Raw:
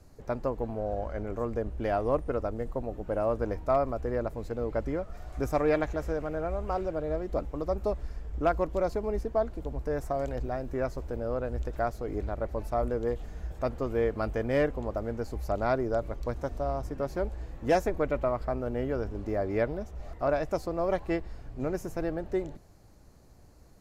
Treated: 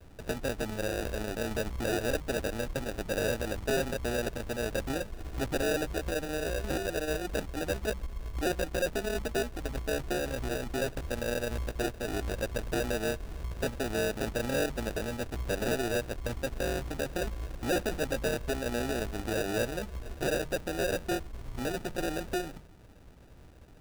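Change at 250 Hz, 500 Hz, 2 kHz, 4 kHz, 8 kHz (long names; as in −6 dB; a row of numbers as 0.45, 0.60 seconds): −1.0 dB, −3.0 dB, +6.0 dB, +13.5 dB, can't be measured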